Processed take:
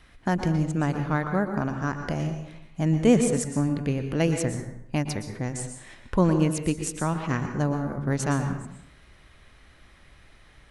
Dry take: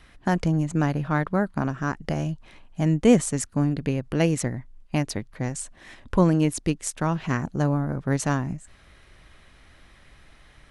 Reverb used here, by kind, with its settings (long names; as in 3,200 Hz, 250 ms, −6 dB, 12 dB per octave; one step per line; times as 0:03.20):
dense smooth reverb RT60 0.71 s, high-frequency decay 0.65×, pre-delay 105 ms, DRR 6.5 dB
level −2 dB